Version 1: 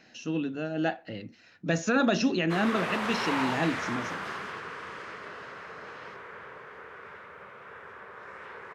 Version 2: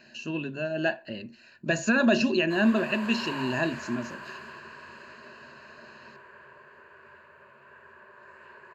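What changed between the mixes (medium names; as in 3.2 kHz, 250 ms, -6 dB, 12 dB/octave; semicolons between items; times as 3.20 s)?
background -8.5 dB; master: add rippled EQ curve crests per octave 1.4, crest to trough 13 dB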